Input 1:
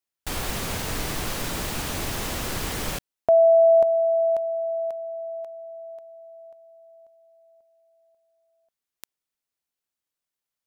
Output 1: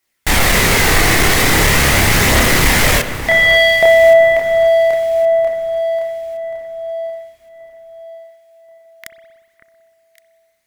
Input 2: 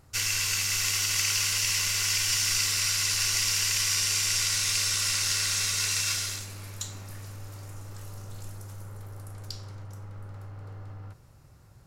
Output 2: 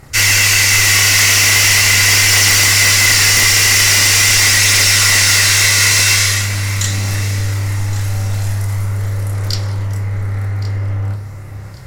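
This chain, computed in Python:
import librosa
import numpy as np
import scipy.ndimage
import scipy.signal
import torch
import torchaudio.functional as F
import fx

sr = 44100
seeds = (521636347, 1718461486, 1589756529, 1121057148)

p1 = fx.peak_eq(x, sr, hz=2000.0, db=10.5, octaves=0.35)
p2 = fx.chorus_voices(p1, sr, voices=2, hz=0.21, base_ms=29, depth_ms=1.4, mix_pct=50)
p3 = fx.fold_sine(p2, sr, drive_db=17, ceiling_db=-7.0)
p4 = p3 + fx.echo_alternate(p3, sr, ms=559, hz=1800.0, feedback_pct=56, wet_db=-11.0, dry=0)
y = fx.rev_spring(p4, sr, rt60_s=1.4, pass_ms=(59,), chirp_ms=45, drr_db=11.0)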